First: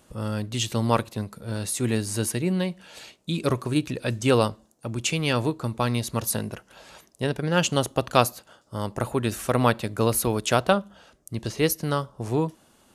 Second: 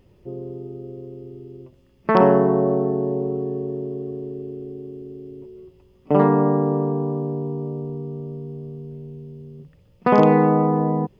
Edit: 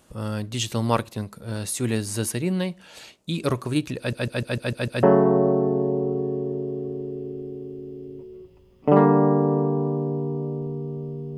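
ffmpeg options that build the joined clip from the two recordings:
ffmpeg -i cue0.wav -i cue1.wav -filter_complex "[0:a]apad=whole_dur=11.37,atrim=end=11.37,asplit=7[link_01][link_02][link_03][link_04][link_05][link_06][link_07];[link_01]atrim=end=4.132[link_08];[link_02]atrim=start=3.978:end=4.132[link_09];[link_03]atrim=start=3.978:end=4.132[link_10];[link_04]atrim=start=3.978:end=4.132[link_11];[link_05]atrim=start=3.978:end=4.132[link_12];[link_06]atrim=start=3.978:end=4.132[link_13];[link_07]atrim=start=3.978:end=4.132[link_14];[1:a]atrim=start=2.258:end=8.6[link_15];[link_08][link_09]acrossfade=duration=0.004:curve1=hsin:curve2=hsin[link_16];[link_16][link_10]acrossfade=duration=0.004:curve1=hsin:curve2=hsin[link_17];[link_17][link_11]acrossfade=duration=0.004:curve1=hsin:curve2=hsin[link_18];[link_18][link_12]acrossfade=duration=0.004:curve1=hsin:curve2=hsin[link_19];[link_19][link_13]acrossfade=duration=0.004:curve1=hsin:curve2=hsin[link_20];[link_20][link_14]acrossfade=duration=0.004:curve1=hsin:curve2=hsin[link_21];[link_21][link_15]acrossfade=duration=0.004:curve1=hsin:curve2=hsin" out.wav

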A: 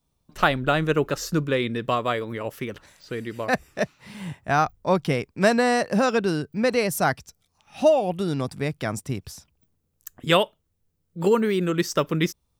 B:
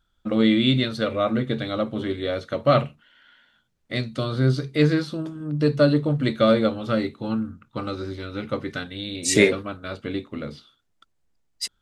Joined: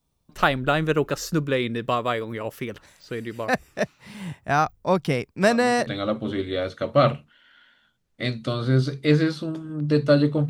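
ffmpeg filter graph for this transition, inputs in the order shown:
ffmpeg -i cue0.wav -i cue1.wav -filter_complex "[1:a]asplit=2[link_01][link_02];[0:a]apad=whole_dur=10.49,atrim=end=10.49,atrim=end=5.872[link_03];[link_02]atrim=start=1.578:end=6.2[link_04];[link_01]atrim=start=1.13:end=1.58,asetpts=PTS-STARTPTS,volume=-14.5dB,afade=type=in:duration=0.004:curve=hsin,afade=type=out:start_time=0.446:duration=0.004:curve=hsin,adelay=5420[link_05];[link_03][link_04]acrossfade=duration=0.004:curve1=hsin:curve2=hsin[link_06];[link_06][link_05]amix=inputs=2:normalize=0" out.wav

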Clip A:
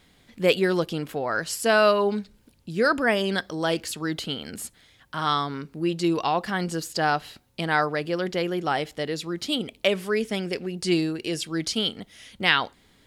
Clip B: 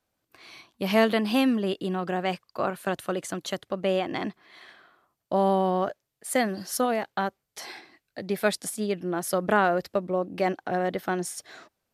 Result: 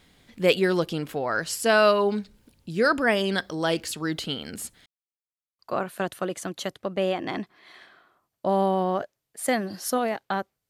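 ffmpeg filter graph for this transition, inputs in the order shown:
ffmpeg -i cue0.wav -i cue1.wav -filter_complex "[0:a]apad=whole_dur=10.69,atrim=end=10.69,asplit=2[link_01][link_02];[link_01]atrim=end=4.86,asetpts=PTS-STARTPTS,afade=type=out:start_time=4.856:duration=0.004:curve=hsin[link_03];[link_02]atrim=start=4.86:end=5.59,asetpts=PTS-STARTPTS,volume=0[link_04];[1:a]atrim=start=2.46:end=7.56,asetpts=PTS-STARTPTS,afade=type=in:duration=0.004:curve=hsin[link_05];[link_03][link_04][link_05]concat=n=3:v=0:a=1" out.wav

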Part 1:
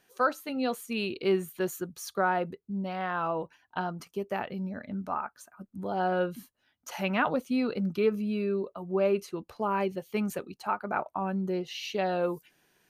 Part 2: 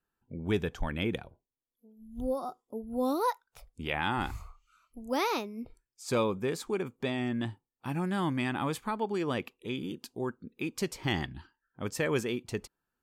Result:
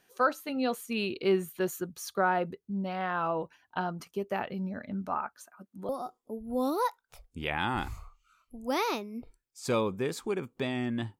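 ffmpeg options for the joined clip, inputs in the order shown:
ffmpeg -i cue0.wav -i cue1.wav -filter_complex "[0:a]asettb=1/sr,asplit=3[link_01][link_02][link_03];[link_01]atrim=end=5.354[link_04];[link_02]atrim=start=5.35:end=5.89,asetpts=PTS-STARTPTS,afade=type=in:duration=0.004:curve=qsin,afade=type=out:start_time=0.536:duration=0.004:curve=qsin,highpass=frequency=320:poles=1[link_05];[link_03]atrim=start=5.886[link_06];[link_04][link_05]acrossfade=duration=0.004:curve1=hsin:curve2=qsin[link_07];[link_07][link_06]acrossfade=duration=0.004:curve1=qsin:curve2=hsin,apad=whole_dur=11.19,atrim=end=11.19,atrim=end=5.892[link_08];[1:a]atrim=start=2.318:end=7.62[link_09];[link_08][link_09]acrossfade=duration=0.004:curve1=hsin:curve2=hsin" out.wav

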